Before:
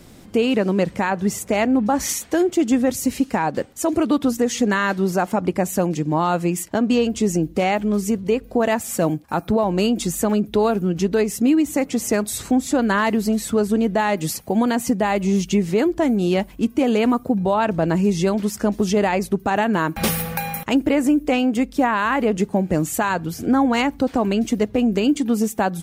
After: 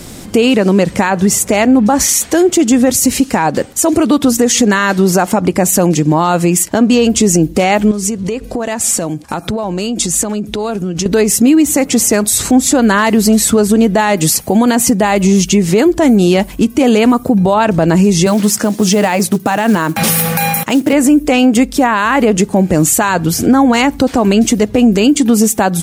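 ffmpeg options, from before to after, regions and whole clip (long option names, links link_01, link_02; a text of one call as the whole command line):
ffmpeg -i in.wav -filter_complex "[0:a]asettb=1/sr,asplit=3[link_01][link_02][link_03];[link_01]atrim=end=7.914[link_04];[link_02]atrim=start=7.91:end=11.06,asetpts=PTS-STARTPTS,afade=type=in:duration=0.004:curve=qsin,afade=type=out:start_time=3.146:duration=0.004:curve=qsin,lowpass=8700,highshelf=frequency=5300:gain=5,acompressor=threshold=-28dB:ratio=8:attack=3.2:release=140:knee=1:detection=peak[link_05];[link_03]atrim=start=11.056[link_06];[link_04][link_05]acrossfade=duration=0.004:curve1=hsin:curve2=qsin[link_07];[link_07][link_06]acrossfade=duration=0.004:curve1=qsin:curve2=hsin,asettb=1/sr,asplit=3[link_08][link_09][link_10];[link_08]atrim=end=18.264[link_11];[link_09]atrim=start=18.26:end=20.93,asetpts=PTS-STARTPTS,afade=type=in:duration=0.004:curve=qsin,afade=type=out:start_time=2.666:duration=0.004:curve=qsin,highpass=frequency=110:width=0.5412,highpass=frequency=110:width=1.3066,bandreject=frequency=390:width=9.5,acrusher=bits=7:mode=log:mix=0:aa=0.000001[link_12];[link_10]atrim=start=20.926[link_13];[link_11][link_12]acrossfade=duration=0.004:curve1=hsin:curve2=qsin[link_14];[link_14][link_13]acrossfade=duration=0.004:curve1=qsin:curve2=hsin,equalizer=frequency=8400:width=0.6:gain=6.5,acompressor=threshold=-20dB:ratio=2,alimiter=level_in=14.5dB:limit=-1dB:release=50:level=0:latency=1,volume=-1dB" out.wav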